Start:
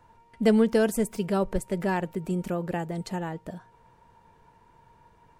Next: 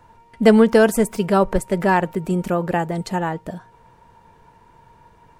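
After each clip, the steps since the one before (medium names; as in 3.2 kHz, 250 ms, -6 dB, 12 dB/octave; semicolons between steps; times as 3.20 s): dynamic bell 1.1 kHz, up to +6 dB, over -40 dBFS, Q 0.75; trim +7 dB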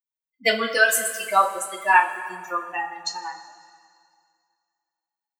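expander on every frequency bin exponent 3; high-pass 1.2 kHz 12 dB/octave; reverberation, pre-delay 3 ms, DRR -2 dB; trim +7 dB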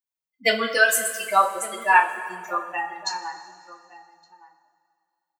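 echo from a far wall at 200 m, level -16 dB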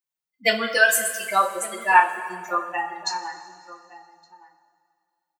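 comb 5.7 ms, depth 43%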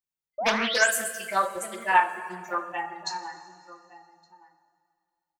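painted sound rise, 0.38–0.91 s, 570–9600 Hz -24 dBFS; bass shelf 230 Hz +10.5 dB; loudspeaker Doppler distortion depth 0.35 ms; trim -5.5 dB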